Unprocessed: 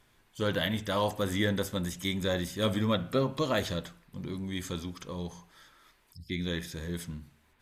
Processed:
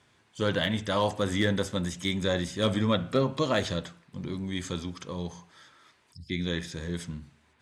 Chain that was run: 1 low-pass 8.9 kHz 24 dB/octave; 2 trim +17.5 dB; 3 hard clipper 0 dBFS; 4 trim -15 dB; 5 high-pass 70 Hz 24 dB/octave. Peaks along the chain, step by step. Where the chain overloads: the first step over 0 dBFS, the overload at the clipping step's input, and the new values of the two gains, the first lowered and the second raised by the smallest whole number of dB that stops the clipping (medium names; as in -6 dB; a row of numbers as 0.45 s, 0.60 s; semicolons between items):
-13.5 dBFS, +4.0 dBFS, 0.0 dBFS, -15.0 dBFS, -12.0 dBFS; step 2, 4.0 dB; step 2 +13.5 dB, step 4 -11 dB